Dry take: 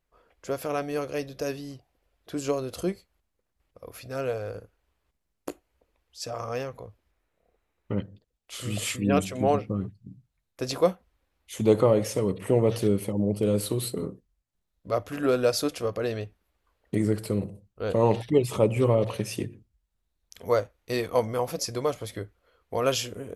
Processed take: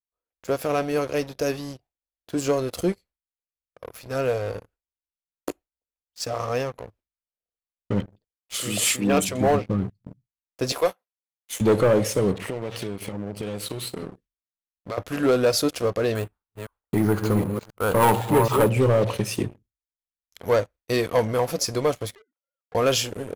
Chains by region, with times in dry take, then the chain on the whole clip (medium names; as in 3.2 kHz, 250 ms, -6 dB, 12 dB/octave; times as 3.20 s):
8.54–9.29 s: Bessel high-pass 180 Hz, order 6 + treble shelf 3.8 kHz +7 dB
10.72–11.61 s: high-pass 540 Hz + treble shelf 9 kHz +7.5 dB
12.34–14.98 s: peaking EQ 2.4 kHz +9.5 dB 2.6 oct + compression 4:1, threshold -35 dBFS
16.15–18.70 s: chunks repeated in reverse 259 ms, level -7 dB + high-order bell 1.1 kHz +10 dB 1.1 oct + careless resampling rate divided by 4×, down filtered, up hold
22.15–22.75 s: formants replaced by sine waves + compression 10:1, threshold -45 dBFS
whole clip: gate with hold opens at -44 dBFS; waveshaping leveller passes 3; trim -5.5 dB